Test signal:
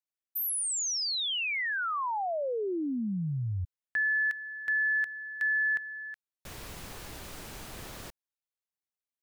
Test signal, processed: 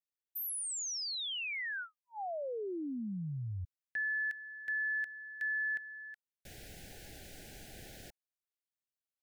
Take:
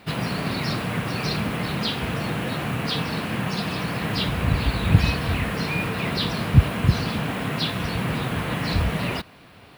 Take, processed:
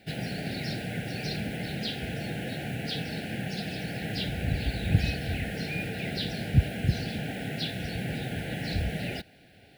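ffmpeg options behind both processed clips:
ffmpeg -i in.wav -af "asuperstop=centerf=1100:order=12:qfactor=1.8,volume=-7dB" out.wav

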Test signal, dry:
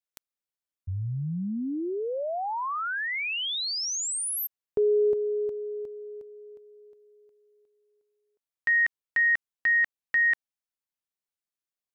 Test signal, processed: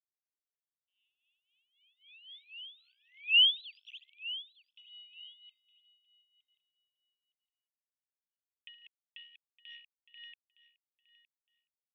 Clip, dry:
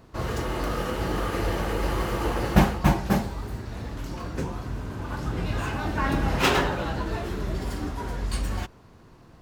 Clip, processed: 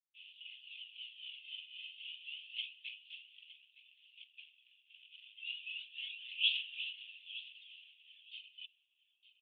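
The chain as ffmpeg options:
ffmpeg -i in.wav -af "afftdn=noise_reduction=13:noise_floor=-45,dynaudnorm=framelen=420:gausssize=11:maxgain=7dB,aphaser=in_gain=1:out_gain=1:delay=2:decay=0.59:speed=0.29:type=sinusoidal,aresample=16000,aeval=exprs='sgn(val(0))*max(abs(val(0))-0.0237,0)':channel_layout=same,aresample=44100,tremolo=f=3.8:d=0.68,asoftclip=type=tanh:threshold=-11.5dB,asuperpass=centerf=3000:order=8:qfactor=3.3,aecho=1:1:913|1826:0.15|0.0269" out.wav

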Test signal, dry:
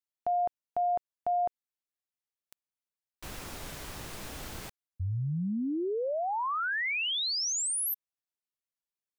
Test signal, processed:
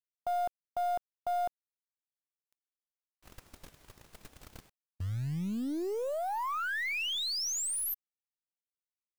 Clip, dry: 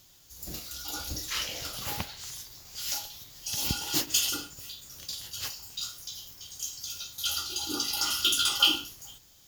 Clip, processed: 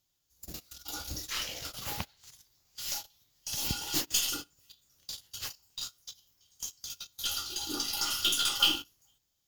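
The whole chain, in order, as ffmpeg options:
ffmpeg -i in.wav -af "agate=range=-18dB:threshold=-42dB:ratio=16:release=35:detection=peak,acrusher=bits=5:mode=log:mix=0:aa=0.000001,aeval=exprs='0.422*(cos(1*acos(clip(val(0)/0.422,-1,1)))-cos(1*PI/2))+0.0211*(cos(6*acos(clip(val(0)/0.422,-1,1)))-cos(6*PI/2))+0.0335*(cos(8*acos(clip(val(0)/0.422,-1,1)))-cos(8*PI/2))':channel_layout=same,volume=-3dB" out.wav

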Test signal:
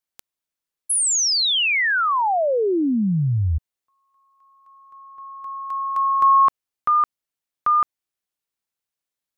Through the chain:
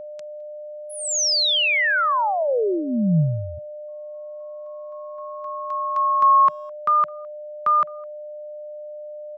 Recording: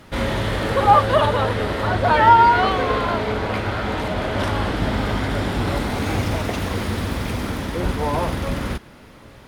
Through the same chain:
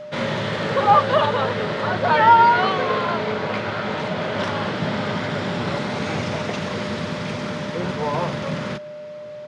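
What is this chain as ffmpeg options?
ffmpeg -i in.wav -filter_complex "[0:a]highpass=frequency=130:width=0.5412,highpass=frequency=130:width=1.3066,equalizer=frequency=160:width_type=q:width=4:gain=5,equalizer=frequency=290:width_type=q:width=4:gain=-8,equalizer=frequency=730:width_type=q:width=4:gain=-3,lowpass=frequency=6800:width=0.5412,lowpass=frequency=6800:width=1.3066,aeval=exprs='val(0)+0.0224*sin(2*PI*600*n/s)':channel_layout=same,asplit=2[link_01][link_02];[link_02]adelay=210,highpass=300,lowpass=3400,asoftclip=type=hard:threshold=-11.5dB,volume=-26dB[link_03];[link_01][link_03]amix=inputs=2:normalize=0" out.wav

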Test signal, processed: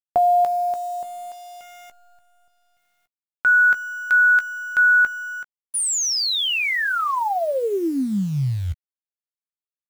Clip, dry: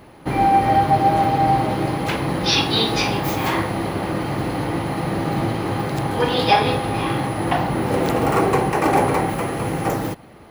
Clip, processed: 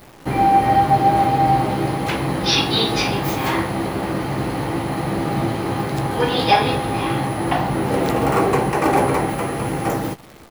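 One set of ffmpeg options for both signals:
ffmpeg -i in.wav -filter_complex "[0:a]acrusher=bits=8:dc=4:mix=0:aa=0.000001,asplit=2[link_01][link_02];[link_02]adelay=15,volume=-11dB[link_03];[link_01][link_03]amix=inputs=2:normalize=0" out.wav

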